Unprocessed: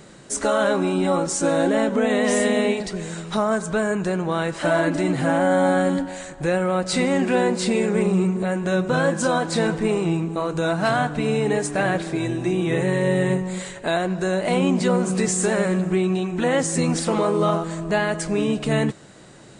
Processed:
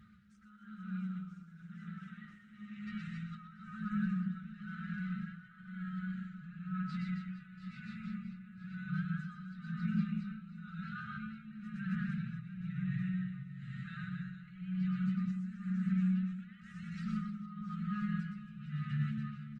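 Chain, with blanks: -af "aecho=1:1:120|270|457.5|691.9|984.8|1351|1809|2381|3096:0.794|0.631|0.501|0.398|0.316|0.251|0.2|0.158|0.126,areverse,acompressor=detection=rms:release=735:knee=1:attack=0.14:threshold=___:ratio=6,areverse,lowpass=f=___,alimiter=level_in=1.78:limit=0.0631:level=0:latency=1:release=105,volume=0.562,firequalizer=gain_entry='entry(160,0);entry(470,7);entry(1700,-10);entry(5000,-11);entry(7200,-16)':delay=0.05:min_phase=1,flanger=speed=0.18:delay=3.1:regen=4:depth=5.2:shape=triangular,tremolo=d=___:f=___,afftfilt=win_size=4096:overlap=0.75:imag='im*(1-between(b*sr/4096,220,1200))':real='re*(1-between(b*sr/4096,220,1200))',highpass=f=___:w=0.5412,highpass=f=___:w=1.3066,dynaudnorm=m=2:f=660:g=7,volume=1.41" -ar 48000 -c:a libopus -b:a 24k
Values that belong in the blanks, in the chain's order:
0.0562, 3k, 0.74, 1, 57, 57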